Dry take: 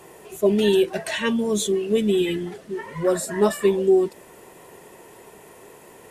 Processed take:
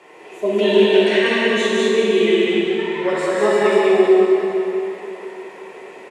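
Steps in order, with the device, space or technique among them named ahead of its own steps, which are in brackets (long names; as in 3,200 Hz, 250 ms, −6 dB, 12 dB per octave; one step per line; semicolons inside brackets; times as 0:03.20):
station announcement (band-pass filter 310–4,500 Hz; parametric band 2,200 Hz +8 dB 0.55 octaves; loudspeakers that aren't time-aligned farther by 56 metres −11 dB, 67 metres −2 dB; convolution reverb RT60 3.5 s, pre-delay 14 ms, DRR −5 dB)
level −1 dB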